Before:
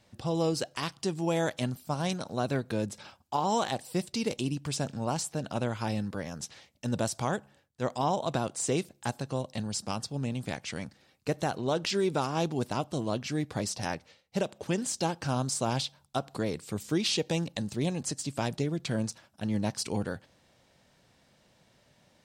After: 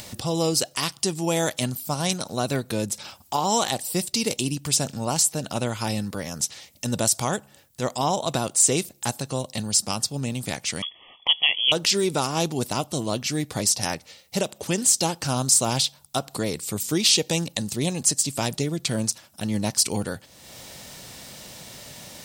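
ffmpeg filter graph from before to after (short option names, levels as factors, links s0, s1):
-filter_complex "[0:a]asettb=1/sr,asplit=3[s0][s1][s2];[s0]atrim=end=10.824[s3];[s1]atrim=start=10.82:end=11.72,asetpts=PTS-STARTPTS,afade=t=in:d=0.004:c=qsin,afade=t=out:st=0.896:d=0.004:c=qsin,highshelf=f=2700:g=11.5,lowpass=f=3000:t=q:w=0.5098,lowpass=f=3000:t=q:w=0.6013,lowpass=f=3000:t=q:w=0.9,lowpass=f=3000:t=q:w=2.563,afreqshift=-3500,asuperstop=centerf=1500:order=8:qfactor=2.4[s4];[s2]atrim=start=11.716[s5];[s3][s4]acrossfade=d=0.004:c1=hsin:c2=qsin[s6];[s6][s5]acrossfade=d=0.004:c1=qsin:c2=hsin,aemphasis=mode=production:type=75kf,bandreject=f=1600:w=16,acompressor=mode=upward:threshold=0.0251:ratio=2.5,volume=1.58"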